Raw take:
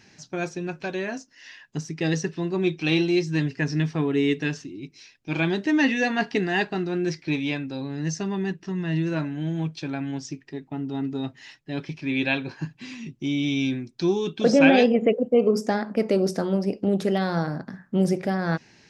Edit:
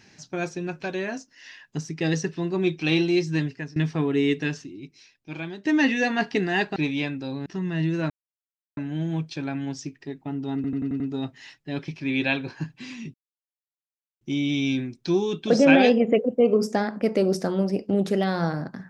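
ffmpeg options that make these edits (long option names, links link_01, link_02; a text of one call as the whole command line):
ffmpeg -i in.wav -filter_complex "[0:a]asplit=12[link_01][link_02][link_03][link_04][link_05][link_06][link_07][link_08][link_09][link_10][link_11][link_12];[link_01]atrim=end=3.76,asetpts=PTS-STARTPTS,afade=type=out:start_time=3.35:duration=0.41:silence=0.0841395[link_13];[link_02]atrim=start=3.76:end=5.65,asetpts=PTS-STARTPTS,afade=type=in:duration=0.004:curve=hsin:silence=0.0841395,afade=type=out:start_time=0.63:duration=1.26:silence=0.177828[link_14];[link_03]atrim=start=5.65:end=6.762,asetpts=PTS-STARTPTS,afade=type=in:duration=0.004:curve=hsin:silence=0.177828[link_15];[link_04]atrim=start=7.248:end=7.952[link_16];[link_05]atrim=start=8.588:end=9.23,asetpts=PTS-STARTPTS,afade=type=out:start_time=0.638:duration=0.004:curve=hsin,apad=pad_dur=0.67[link_17];[link_06]atrim=start=9.23:end=11.102,asetpts=PTS-STARTPTS,afade=type=in:duration=0.004:curve=hsin[link_18];[link_07]atrim=start=11.008:end=11.102[link_19];[link_08]atrim=start=11.008:end=11.102[link_20];[link_09]atrim=start=11.008:end=11.102[link_21];[link_10]atrim=start=11.008:end=11.102[link_22];[link_11]atrim=start=11.008:end=13.15,asetpts=PTS-STARTPTS,afade=type=out:start_time=2.138:duration=0.004:curve=hsin,apad=pad_dur=1.07[link_23];[link_12]atrim=start=13.15,asetpts=PTS-STARTPTS,afade=type=in:duration=0.004:curve=hsin[link_24];[link_13][link_14][link_15]concat=n=3:v=0:a=1[link_25];[link_25][link_16]acrossfade=duration=0.004:curve1=hsin:curve2=hsin[link_26];[link_17][link_18]concat=n=2:v=0:a=1[link_27];[link_26][link_27]acrossfade=duration=0.004:curve1=hsin:curve2=hsin[link_28];[link_28][link_19]acrossfade=duration=0.004:curve1=hsin:curve2=hsin[link_29];[link_29][link_20]acrossfade=duration=0.004:curve1=hsin:curve2=hsin[link_30];[link_30][link_21]acrossfade=duration=0.004:curve1=hsin:curve2=hsin[link_31];[link_31][link_22]acrossfade=duration=0.004:curve1=hsin:curve2=hsin[link_32];[link_23][link_24]concat=n=2:v=0:a=1[link_33];[link_32][link_33]acrossfade=duration=0.004:curve1=hsin:curve2=hsin" out.wav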